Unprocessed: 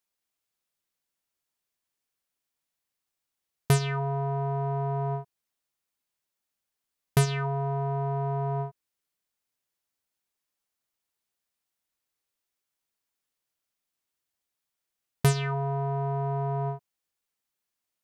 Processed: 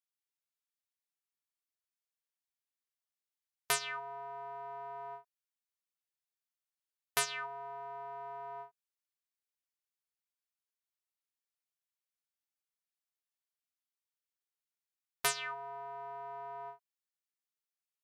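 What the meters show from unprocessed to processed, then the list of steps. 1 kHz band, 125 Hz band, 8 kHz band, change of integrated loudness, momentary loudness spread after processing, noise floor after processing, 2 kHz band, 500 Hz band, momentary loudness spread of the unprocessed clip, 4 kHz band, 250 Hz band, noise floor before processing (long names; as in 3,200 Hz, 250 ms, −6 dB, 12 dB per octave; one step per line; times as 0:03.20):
−8.0 dB, −36.5 dB, 0.0 dB, −10.5 dB, 14 LU, below −85 dBFS, −1.5 dB, −14.0 dB, 7 LU, −1.0 dB, below −30 dB, below −85 dBFS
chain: high-pass filter 1,000 Hz 12 dB per octave
expander for the loud parts 1.5 to 1, over −53 dBFS
level +1 dB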